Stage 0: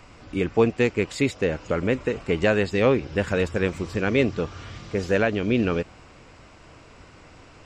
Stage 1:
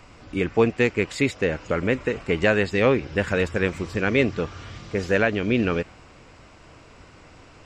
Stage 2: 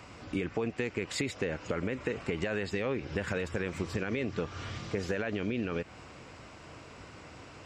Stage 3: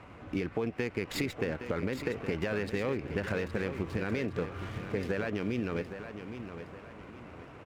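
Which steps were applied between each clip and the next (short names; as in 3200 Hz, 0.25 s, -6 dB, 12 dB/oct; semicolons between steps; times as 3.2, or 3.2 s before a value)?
dynamic EQ 1900 Hz, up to +4 dB, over -42 dBFS, Q 1.3
HPF 67 Hz; limiter -14 dBFS, peak gain reduction 10 dB; compressor, threshold -29 dBFS, peak gain reduction 9.5 dB
Wiener smoothing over 9 samples; feedback echo 0.816 s, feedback 38%, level -10 dB; running maximum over 3 samples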